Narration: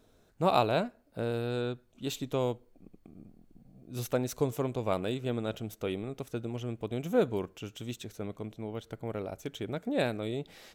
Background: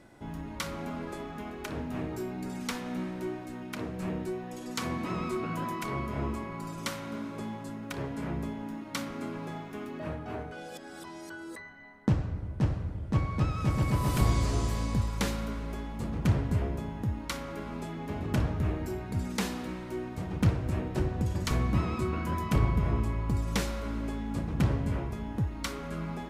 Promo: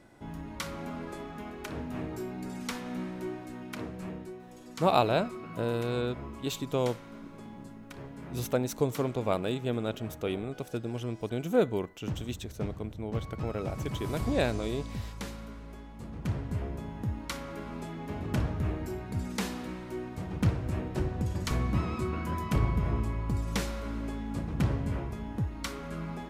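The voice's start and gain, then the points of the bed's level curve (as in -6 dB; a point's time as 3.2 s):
4.40 s, +1.5 dB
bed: 3.8 s -1.5 dB
4.35 s -9 dB
15.93 s -9 dB
17.09 s -1.5 dB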